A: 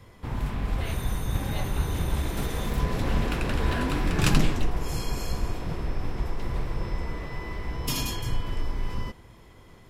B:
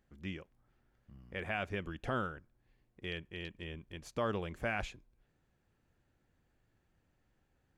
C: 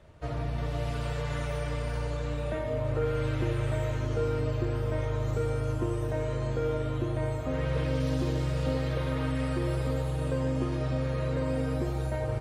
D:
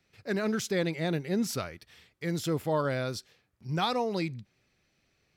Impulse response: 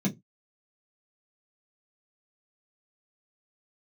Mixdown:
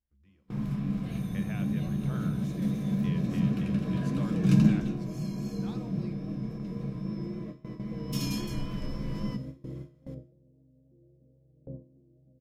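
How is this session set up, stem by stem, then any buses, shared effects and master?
-2.5 dB, 0.25 s, send -12.5 dB, peaking EQ 5.4 kHz +5 dB 0.34 oct; band-stop 820 Hz, Q 12; auto duck -13 dB, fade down 1.70 s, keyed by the second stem
+3.0 dB, 0.00 s, send -21.5 dB, resonant low shelf 110 Hz +11.5 dB, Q 1.5; compression, threshold -38 dBFS, peak gain reduction 13.5 dB
-12.0 dB, 1.35 s, send -12 dB, inverse Chebyshev low-pass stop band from 1.2 kHz, stop band 40 dB
-16.5 dB, 1.85 s, no send, none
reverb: on, pre-delay 3 ms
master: gate with hold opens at -24 dBFS; feedback comb 70 Hz, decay 0.46 s, harmonics all, mix 60%; vibrato 3.7 Hz 28 cents

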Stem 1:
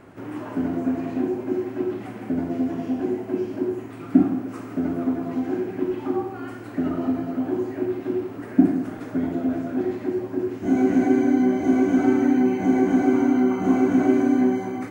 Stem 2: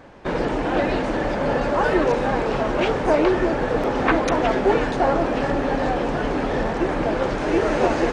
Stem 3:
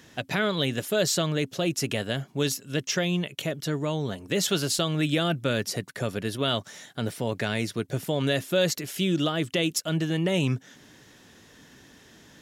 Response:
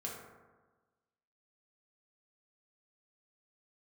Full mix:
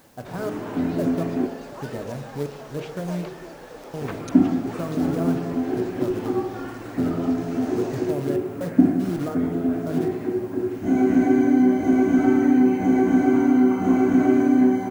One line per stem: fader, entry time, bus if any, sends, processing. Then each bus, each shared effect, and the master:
-2.5 dB, 0.20 s, muted 1.47–4.01 s, send -7 dB, bass shelf 83 Hz +8.5 dB
-9.5 dB, 0.00 s, no send, tone controls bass -6 dB, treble +14 dB; auto duck -9 dB, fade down 0.35 s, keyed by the third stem
-6.0 dB, 0.00 s, send -3.5 dB, low-pass 1.2 kHz 24 dB/octave; trance gate "xx..x..xxx.x" 61 bpm; short-mantissa float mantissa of 2-bit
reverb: on, RT60 1.3 s, pre-delay 3 ms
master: word length cut 10-bit, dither triangular

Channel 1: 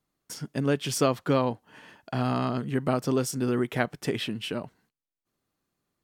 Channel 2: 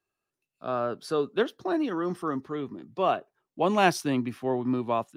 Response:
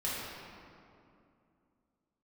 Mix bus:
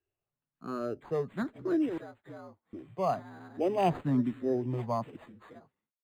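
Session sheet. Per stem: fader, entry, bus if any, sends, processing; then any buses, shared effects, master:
-12.5 dB, 1.00 s, no send, frequency axis rescaled in octaves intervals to 115%; bass shelf 140 Hz -8.5 dB; compression 2:1, threshold -36 dBFS, peak gain reduction 8.5 dB
-5.0 dB, 0.00 s, muted 1.98–2.73 s, no send, bass shelf 300 Hz +11.5 dB; barber-pole phaser +1.1 Hz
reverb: none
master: decimation joined by straight lines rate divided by 8×

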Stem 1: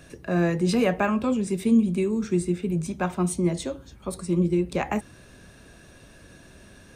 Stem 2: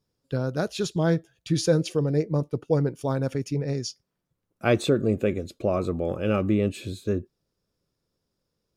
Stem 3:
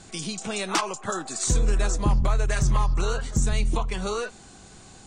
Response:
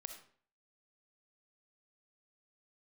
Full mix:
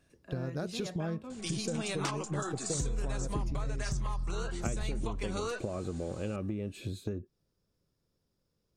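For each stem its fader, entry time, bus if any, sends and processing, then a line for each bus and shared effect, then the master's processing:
-20.0 dB, 0.00 s, no send, none
-3.0 dB, 0.00 s, no send, bass shelf 220 Hz +5.5 dB; compression, threshold -28 dBFS, peak gain reduction 13.5 dB
-5.0 dB, 1.30 s, no send, none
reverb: none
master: compression, threshold -30 dBFS, peak gain reduction 9 dB

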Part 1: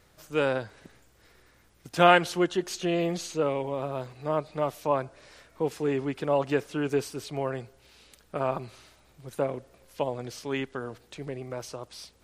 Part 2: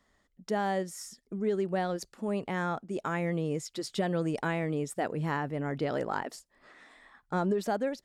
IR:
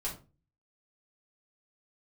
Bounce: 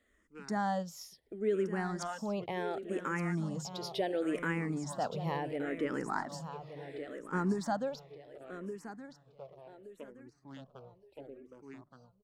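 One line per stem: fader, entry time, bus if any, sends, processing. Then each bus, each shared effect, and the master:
9.68 s -19 dB -> 10.30 s -11 dB, 0.00 s, no send, echo send -4.5 dB, local Wiener filter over 25 samples; reverb removal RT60 0.64 s
-0.5 dB, 0.00 s, no send, echo send -10.5 dB, none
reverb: none
echo: feedback delay 1171 ms, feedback 31%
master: hum notches 50/100/150 Hz; barber-pole phaser -0.71 Hz

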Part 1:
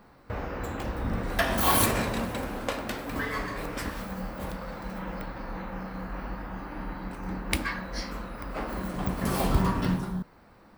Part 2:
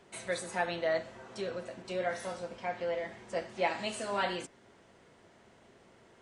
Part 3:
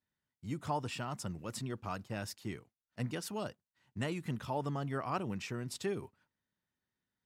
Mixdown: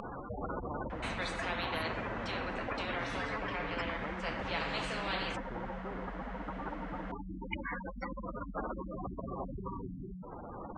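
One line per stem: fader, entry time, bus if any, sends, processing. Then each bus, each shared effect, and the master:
-6.5 dB, 0.00 s, no send, spectral gate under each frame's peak -10 dB strong; gain riding within 5 dB 0.5 s
-2.5 dB, 0.90 s, no send, elliptic high-pass 460 Hz
-10.0 dB, 0.00 s, no send, elliptic low-pass 1 kHz, stop band 40 dB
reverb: none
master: low-pass 1.5 kHz 12 dB/octave; upward compressor, threshold -55 dBFS; spectrum-flattening compressor 4:1

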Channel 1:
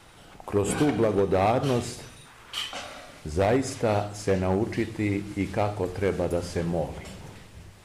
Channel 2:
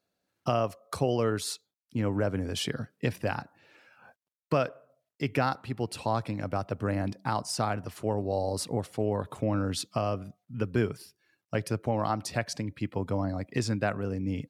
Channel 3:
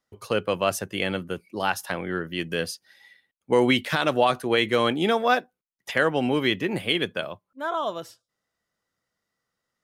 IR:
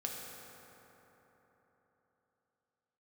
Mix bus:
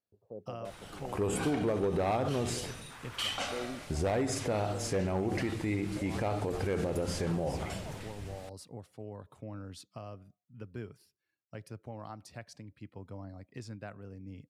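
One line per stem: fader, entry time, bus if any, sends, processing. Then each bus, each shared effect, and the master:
+1.0 dB, 0.65 s, no send, none
-16.5 dB, 0.00 s, no send, bass shelf 73 Hz +9.5 dB
-19.5 dB, 0.00 s, no send, steep low-pass 780 Hz 48 dB/octave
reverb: none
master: peak limiter -24 dBFS, peak gain reduction 10 dB

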